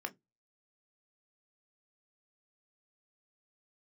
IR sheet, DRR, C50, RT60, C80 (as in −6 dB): 6.5 dB, 25.0 dB, 0.15 s, 35.5 dB